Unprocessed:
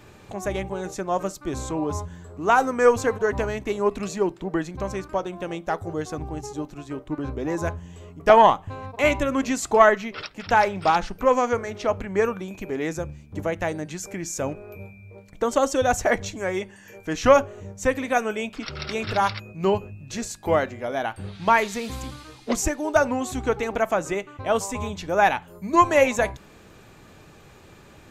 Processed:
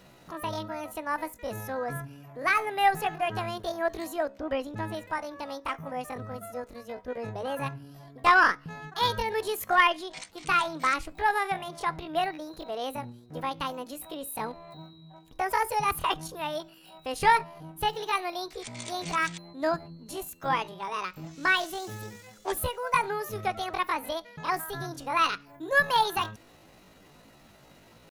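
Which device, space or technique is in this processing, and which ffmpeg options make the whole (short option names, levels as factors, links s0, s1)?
chipmunk voice: -filter_complex "[0:a]asettb=1/sr,asplit=3[s0][s1][s2];[s0]atrim=end=4.324[s3];[s1]atrim=start=4.32:end=4.96,asetpts=PTS-STARTPTS,afade=t=in:d=0.004:c=qsin,afade=t=out:st=0.636:d=0.004:c=qsin,bass=f=250:g=4,treble=f=4000:g=-6[s4];[s2]atrim=start=4.956[s5];[s3][s4]acrossfade=d=0.004:c1=hsin:c2=qsin[s6];[s6][s5]acrossfade=d=0.004:c1=qsin:c2=hsin,asetrate=72056,aresample=44100,atempo=0.612027,volume=0.501"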